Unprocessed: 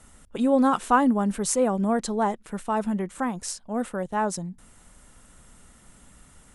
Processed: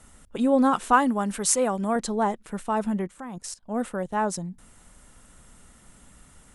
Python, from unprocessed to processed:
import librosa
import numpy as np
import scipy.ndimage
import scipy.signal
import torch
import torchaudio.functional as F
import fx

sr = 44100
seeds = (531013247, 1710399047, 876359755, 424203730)

y = fx.tilt_shelf(x, sr, db=-4.5, hz=730.0, at=(0.93, 1.96))
y = fx.level_steps(y, sr, step_db=18, at=(3.07, 3.68))